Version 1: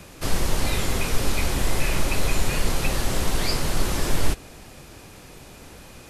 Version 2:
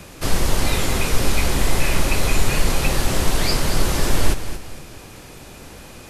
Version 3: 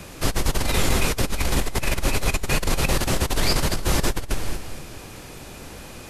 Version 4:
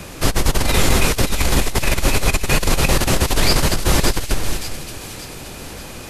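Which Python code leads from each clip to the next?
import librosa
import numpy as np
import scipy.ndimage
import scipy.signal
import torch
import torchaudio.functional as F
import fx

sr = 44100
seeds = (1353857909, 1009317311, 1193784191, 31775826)

y1 = fx.echo_feedback(x, sr, ms=228, feedback_pct=33, wet_db=-11.0)
y1 = y1 * librosa.db_to_amplitude(4.0)
y2 = fx.over_compress(y1, sr, threshold_db=-17.0, ratio=-0.5)
y2 = y2 * librosa.db_to_amplitude(-2.5)
y3 = fx.echo_wet_highpass(y2, sr, ms=577, feedback_pct=48, hz=2600.0, wet_db=-8.5)
y3 = y3 * librosa.db_to_amplitude(5.5)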